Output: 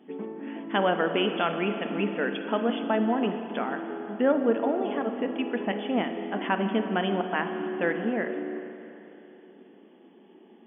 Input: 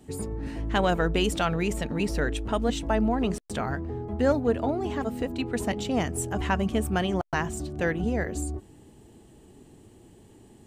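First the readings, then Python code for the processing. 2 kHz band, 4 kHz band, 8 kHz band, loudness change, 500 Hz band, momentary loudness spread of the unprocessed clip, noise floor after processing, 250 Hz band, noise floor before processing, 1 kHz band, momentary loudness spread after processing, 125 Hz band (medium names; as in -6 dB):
+1.0 dB, -0.5 dB, under -40 dB, 0.0 dB, +1.0 dB, 8 LU, -54 dBFS, 0.0 dB, -54 dBFS, +1.0 dB, 11 LU, -9.0 dB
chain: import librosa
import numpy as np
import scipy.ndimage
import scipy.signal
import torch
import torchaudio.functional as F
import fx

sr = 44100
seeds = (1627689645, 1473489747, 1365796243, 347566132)

y = fx.brickwall_bandpass(x, sr, low_hz=180.0, high_hz=3500.0)
y = fx.rev_spring(y, sr, rt60_s=3.1, pass_ms=(35, 54), chirp_ms=75, drr_db=6.5)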